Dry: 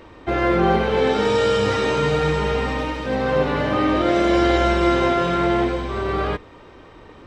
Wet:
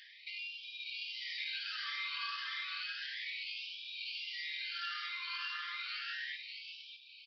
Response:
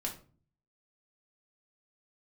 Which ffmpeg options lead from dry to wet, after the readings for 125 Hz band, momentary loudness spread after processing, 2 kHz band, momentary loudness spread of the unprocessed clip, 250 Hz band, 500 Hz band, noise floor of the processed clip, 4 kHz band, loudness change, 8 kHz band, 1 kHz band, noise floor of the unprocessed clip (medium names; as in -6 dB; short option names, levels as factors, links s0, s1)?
under -40 dB, 6 LU, -13.0 dB, 7 LU, under -40 dB, under -40 dB, -57 dBFS, -8.0 dB, -20.0 dB, no reading, -27.0 dB, -45 dBFS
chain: -filter_complex "[0:a]afftfilt=real='re*pow(10,14/40*sin(2*PI*(0.92*log(max(b,1)*sr/1024/100)/log(2)-(1.6)*(pts-256)/sr)))':imag='im*pow(10,14/40*sin(2*PI*(0.92*log(max(b,1)*sr/1024/100)/log(2)-(1.6)*(pts-256)/sr)))':win_size=1024:overlap=0.75,aderivative,acrossover=split=160[s0][s1];[s1]acompressor=threshold=0.00631:ratio=6[s2];[s0][s2]amix=inputs=2:normalize=0,aeval=exprs='val(0)*sin(2*PI*700*n/s)':c=same,aresample=11025,acrusher=bits=4:mode=log:mix=0:aa=0.000001,aresample=44100,aeval=exprs='val(0)+0.0002*(sin(2*PI*50*n/s)+sin(2*PI*2*50*n/s)/2+sin(2*PI*3*50*n/s)/3+sin(2*PI*4*50*n/s)/4+sin(2*PI*5*50*n/s)/5)':c=same,aecho=1:1:599:0.668,afftfilt=real='re*gte(b*sr/1024,960*pow(2300/960,0.5+0.5*sin(2*PI*0.32*pts/sr)))':imag='im*gte(b*sr/1024,960*pow(2300/960,0.5+0.5*sin(2*PI*0.32*pts/sr)))':win_size=1024:overlap=0.75,volume=2.66"